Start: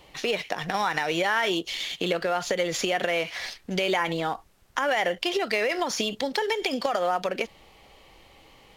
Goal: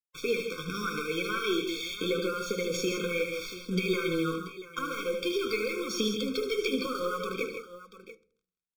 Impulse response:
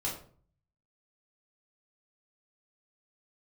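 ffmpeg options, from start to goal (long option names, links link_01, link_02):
-filter_complex "[0:a]flanger=delay=4.3:depth=7.8:regen=41:speed=0.83:shape=sinusoidal,acrusher=bits=6:mix=0:aa=0.5,aeval=exprs='0.2*(cos(1*acos(clip(val(0)/0.2,-1,1)))-cos(1*PI/2))+0.0112*(cos(2*acos(clip(val(0)/0.2,-1,1)))-cos(2*PI/2))':channel_layout=same,aecho=1:1:76|137|161|685:0.355|0.266|0.376|0.188,asplit=2[link_01][link_02];[1:a]atrim=start_sample=2205,lowshelf=frequency=260:gain=7[link_03];[link_02][link_03]afir=irnorm=-1:irlink=0,volume=-16.5dB[link_04];[link_01][link_04]amix=inputs=2:normalize=0,afftfilt=real='re*eq(mod(floor(b*sr/1024/530),2),0)':imag='im*eq(mod(floor(b*sr/1024/530),2),0)':win_size=1024:overlap=0.75"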